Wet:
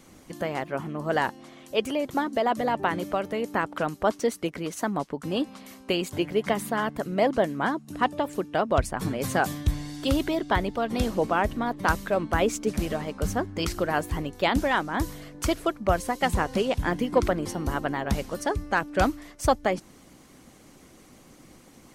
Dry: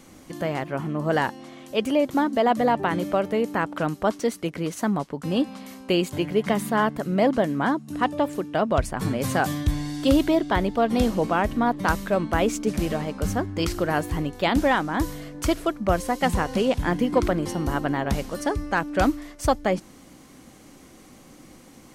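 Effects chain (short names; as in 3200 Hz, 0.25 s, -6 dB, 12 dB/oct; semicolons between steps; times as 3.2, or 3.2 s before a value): harmonic-percussive split harmonic -7 dB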